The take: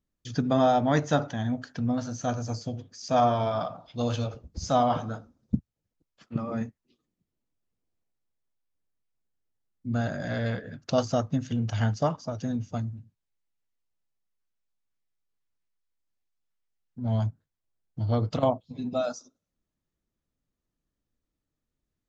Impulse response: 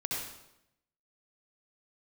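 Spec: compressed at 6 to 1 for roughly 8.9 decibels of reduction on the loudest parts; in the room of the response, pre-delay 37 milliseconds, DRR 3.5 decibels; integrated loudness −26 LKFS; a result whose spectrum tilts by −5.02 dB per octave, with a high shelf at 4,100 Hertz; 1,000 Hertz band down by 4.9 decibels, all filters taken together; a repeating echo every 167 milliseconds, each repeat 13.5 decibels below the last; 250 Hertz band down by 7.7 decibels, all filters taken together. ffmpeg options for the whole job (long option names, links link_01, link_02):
-filter_complex "[0:a]equalizer=frequency=250:width_type=o:gain=-8.5,equalizer=frequency=1000:width_type=o:gain=-7.5,highshelf=frequency=4100:gain=7,acompressor=threshold=-32dB:ratio=6,aecho=1:1:167|334:0.211|0.0444,asplit=2[link_01][link_02];[1:a]atrim=start_sample=2205,adelay=37[link_03];[link_02][link_03]afir=irnorm=-1:irlink=0,volume=-8dB[link_04];[link_01][link_04]amix=inputs=2:normalize=0,volume=10dB"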